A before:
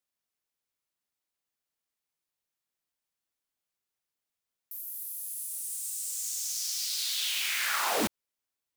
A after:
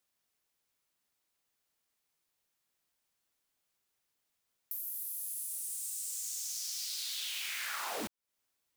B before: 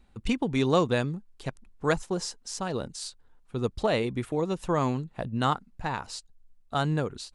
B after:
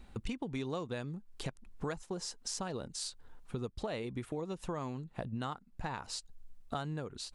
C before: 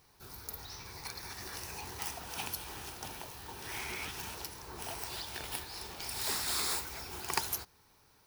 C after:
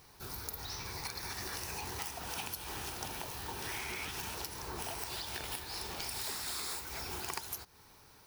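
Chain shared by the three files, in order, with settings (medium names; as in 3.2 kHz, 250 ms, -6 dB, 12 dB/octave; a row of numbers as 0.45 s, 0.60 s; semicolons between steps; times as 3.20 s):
compression 6:1, threshold -43 dBFS; trim +6 dB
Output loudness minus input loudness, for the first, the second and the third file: -6.0 LU, -11.0 LU, -1.0 LU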